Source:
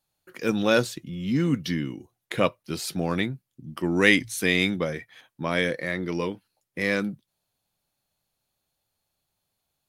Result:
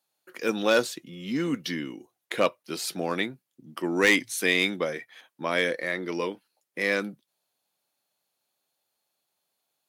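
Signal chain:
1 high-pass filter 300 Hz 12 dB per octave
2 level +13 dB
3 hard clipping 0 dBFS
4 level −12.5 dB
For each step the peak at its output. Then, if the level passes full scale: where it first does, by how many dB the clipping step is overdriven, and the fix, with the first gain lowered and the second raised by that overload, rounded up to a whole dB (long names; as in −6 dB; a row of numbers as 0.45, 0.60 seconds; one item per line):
−4.5, +8.5, 0.0, −12.5 dBFS
step 2, 8.5 dB
step 2 +4 dB, step 4 −3.5 dB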